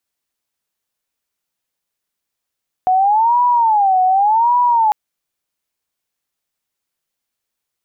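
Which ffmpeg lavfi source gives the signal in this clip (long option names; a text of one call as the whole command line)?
ffmpeg -f lavfi -i "aevalsrc='0.316*sin(2*PI*(859*t-119/(2*PI*0.87)*sin(2*PI*0.87*t)))':duration=2.05:sample_rate=44100" out.wav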